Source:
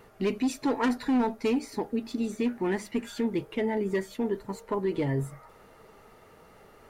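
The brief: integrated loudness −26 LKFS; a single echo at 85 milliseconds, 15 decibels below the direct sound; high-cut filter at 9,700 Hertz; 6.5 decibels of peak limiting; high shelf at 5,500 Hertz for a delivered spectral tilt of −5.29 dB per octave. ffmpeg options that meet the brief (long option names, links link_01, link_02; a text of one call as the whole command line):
ffmpeg -i in.wav -af "lowpass=9700,highshelf=frequency=5500:gain=7,alimiter=level_in=1dB:limit=-24dB:level=0:latency=1,volume=-1dB,aecho=1:1:85:0.178,volume=7.5dB" out.wav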